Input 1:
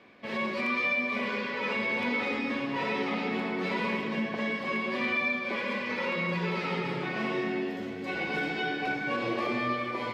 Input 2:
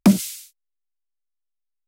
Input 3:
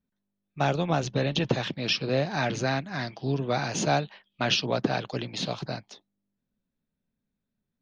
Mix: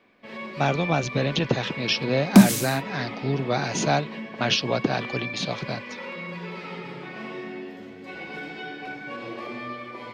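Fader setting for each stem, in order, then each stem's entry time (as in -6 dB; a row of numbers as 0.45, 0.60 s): -5.0, +2.0, +2.0 dB; 0.00, 2.30, 0.00 s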